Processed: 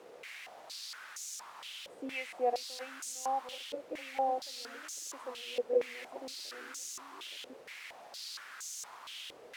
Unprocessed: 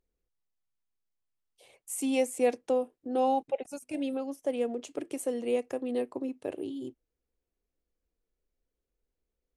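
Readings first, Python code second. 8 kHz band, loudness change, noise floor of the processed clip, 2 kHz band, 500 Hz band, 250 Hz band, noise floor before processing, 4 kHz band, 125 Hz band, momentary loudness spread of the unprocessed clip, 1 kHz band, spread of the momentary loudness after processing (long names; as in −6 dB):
+1.5 dB, −7.5 dB, −54 dBFS, +2.5 dB, −7.0 dB, −17.0 dB, below −85 dBFS, +7.5 dB, can't be measured, 10 LU, −1.0 dB, 12 LU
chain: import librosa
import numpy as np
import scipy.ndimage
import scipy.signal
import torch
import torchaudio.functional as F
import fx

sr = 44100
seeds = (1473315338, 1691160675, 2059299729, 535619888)

y = fx.reverse_delay(x, sr, ms=628, wet_db=-4.0)
y = fx.quant_dither(y, sr, seeds[0], bits=6, dither='triangular')
y = fx.filter_held_bandpass(y, sr, hz=4.3, low_hz=490.0, high_hz=6500.0)
y = y * librosa.db_to_amplitude(3.0)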